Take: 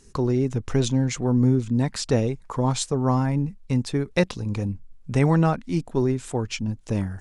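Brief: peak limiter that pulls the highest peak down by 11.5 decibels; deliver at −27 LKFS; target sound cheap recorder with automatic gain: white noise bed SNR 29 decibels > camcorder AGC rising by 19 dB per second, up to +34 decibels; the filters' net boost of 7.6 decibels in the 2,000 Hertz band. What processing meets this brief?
parametric band 2,000 Hz +9 dB
brickwall limiter −14.5 dBFS
white noise bed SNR 29 dB
camcorder AGC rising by 19 dB per second, up to +34 dB
level −1 dB

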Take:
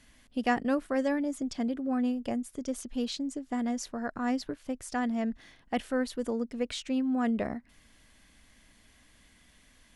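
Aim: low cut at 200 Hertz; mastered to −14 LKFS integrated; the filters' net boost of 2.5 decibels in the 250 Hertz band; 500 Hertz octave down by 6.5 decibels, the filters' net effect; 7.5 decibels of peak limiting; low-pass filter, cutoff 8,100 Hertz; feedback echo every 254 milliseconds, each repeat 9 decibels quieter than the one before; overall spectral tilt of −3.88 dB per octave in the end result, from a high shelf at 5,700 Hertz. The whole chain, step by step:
high-pass filter 200 Hz
low-pass filter 8,100 Hz
parametric band 250 Hz +6 dB
parametric band 500 Hz −8.5 dB
high-shelf EQ 5,700 Hz +6 dB
brickwall limiter −24 dBFS
repeating echo 254 ms, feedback 35%, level −9 dB
level +18 dB

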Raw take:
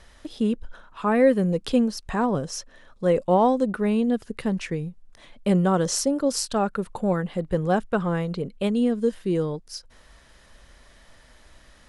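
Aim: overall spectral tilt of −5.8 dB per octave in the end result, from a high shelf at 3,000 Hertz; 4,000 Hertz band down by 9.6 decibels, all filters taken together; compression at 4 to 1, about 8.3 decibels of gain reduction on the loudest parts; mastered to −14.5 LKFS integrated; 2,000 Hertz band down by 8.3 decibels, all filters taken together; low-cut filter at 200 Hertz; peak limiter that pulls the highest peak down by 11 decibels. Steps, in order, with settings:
high-pass filter 200 Hz
parametric band 2,000 Hz −8 dB
high-shelf EQ 3,000 Hz −8 dB
parametric band 4,000 Hz −4 dB
downward compressor 4 to 1, threshold −24 dBFS
level +21.5 dB
brickwall limiter −5 dBFS

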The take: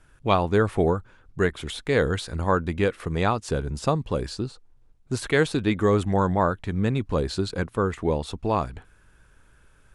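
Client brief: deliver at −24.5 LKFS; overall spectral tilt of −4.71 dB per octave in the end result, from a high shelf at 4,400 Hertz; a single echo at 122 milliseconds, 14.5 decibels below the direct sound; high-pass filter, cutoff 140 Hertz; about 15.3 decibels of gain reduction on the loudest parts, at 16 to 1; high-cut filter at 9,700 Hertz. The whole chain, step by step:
high-pass filter 140 Hz
low-pass filter 9,700 Hz
high-shelf EQ 4,400 Hz +4.5 dB
downward compressor 16 to 1, threshold −31 dBFS
single-tap delay 122 ms −14.5 dB
level +12.5 dB

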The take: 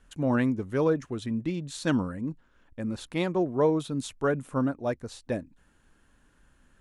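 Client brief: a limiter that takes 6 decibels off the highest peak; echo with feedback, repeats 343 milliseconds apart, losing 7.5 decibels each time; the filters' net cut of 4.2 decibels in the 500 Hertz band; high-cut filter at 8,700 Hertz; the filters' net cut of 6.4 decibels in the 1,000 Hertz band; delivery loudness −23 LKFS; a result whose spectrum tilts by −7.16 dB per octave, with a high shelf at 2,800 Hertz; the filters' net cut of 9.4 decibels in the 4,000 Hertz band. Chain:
low-pass filter 8,700 Hz
parametric band 500 Hz −3.5 dB
parametric band 1,000 Hz −6 dB
high-shelf EQ 2,800 Hz −4.5 dB
parametric band 4,000 Hz −7.5 dB
brickwall limiter −21 dBFS
repeating echo 343 ms, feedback 42%, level −7.5 dB
level +9.5 dB

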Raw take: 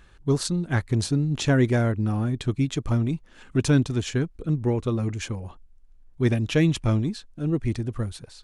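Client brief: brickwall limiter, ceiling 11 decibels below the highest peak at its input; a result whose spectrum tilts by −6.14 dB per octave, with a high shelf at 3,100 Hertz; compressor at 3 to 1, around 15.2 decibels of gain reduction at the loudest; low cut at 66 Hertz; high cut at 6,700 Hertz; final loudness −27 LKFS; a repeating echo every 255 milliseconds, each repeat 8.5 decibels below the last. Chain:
high-pass filter 66 Hz
low-pass filter 6,700 Hz
high-shelf EQ 3,100 Hz −3 dB
downward compressor 3 to 1, threshold −37 dBFS
brickwall limiter −34.5 dBFS
repeating echo 255 ms, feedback 38%, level −8.5 dB
level +15.5 dB

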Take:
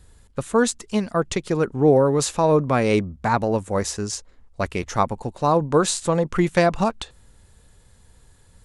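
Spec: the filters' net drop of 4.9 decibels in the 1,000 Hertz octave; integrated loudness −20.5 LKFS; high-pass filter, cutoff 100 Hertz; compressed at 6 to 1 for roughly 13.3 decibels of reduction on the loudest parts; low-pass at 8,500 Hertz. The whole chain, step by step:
high-pass filter 100 Hz
low-pass filter 8,500 Hz
parametric band 1,000 Hz −6.5 dB
downward compressor 6 to 1, threshold −28 dBFS
level +12.5 dB

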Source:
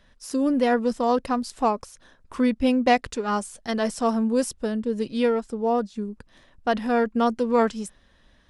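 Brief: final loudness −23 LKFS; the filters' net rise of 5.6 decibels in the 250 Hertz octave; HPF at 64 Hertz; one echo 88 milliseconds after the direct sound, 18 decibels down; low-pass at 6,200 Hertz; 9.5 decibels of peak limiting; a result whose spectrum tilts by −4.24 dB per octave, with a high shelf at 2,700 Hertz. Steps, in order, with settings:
high-pass filter 64 Hz
low-pass filter 6,200 Hz
parametric band 250 Hz +6 dB
high-shelf EQ 2,700 Hz −4 dB
brickwall limiter −13 dBFS
single-tap delay 88 ms −18 dB

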